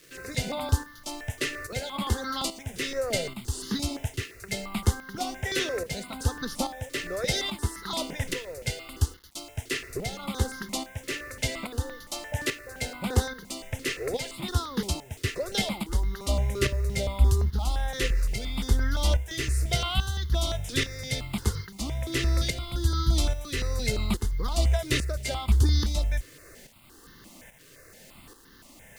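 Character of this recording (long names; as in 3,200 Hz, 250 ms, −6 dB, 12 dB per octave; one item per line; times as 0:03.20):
tremolo saw up 1.2 Hz, depth 65%
a quantiser's noise floor 10 bits, dither none
notches that jump at a steady rate 5.8 Hz 220–2,400 Hz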